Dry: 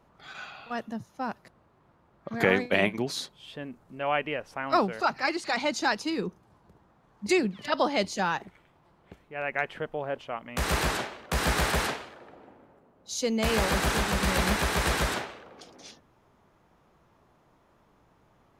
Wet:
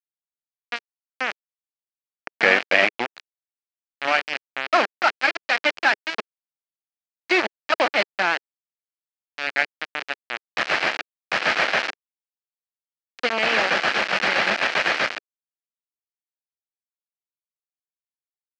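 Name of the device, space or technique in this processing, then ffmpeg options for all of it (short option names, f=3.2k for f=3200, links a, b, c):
hand-held game console: -af "acrusher=bits=3:mix=0:aa=0.000001,highpass=420,equalizer=f=420:t=q:w=4:g=-6,equalizer=f=1k:t=q:w=4:g=-6,equalizer=f=1.7k:t=q:w=4:g=3,equalizer=f=2.4k:t=q:w=4:g=3,equalizer=f=3.6k:t=q:w=4:g=-6,lowpass=f=4.2k:w=0.5412,lowpass=f=4.2k:w=1.3066,volume=7dB"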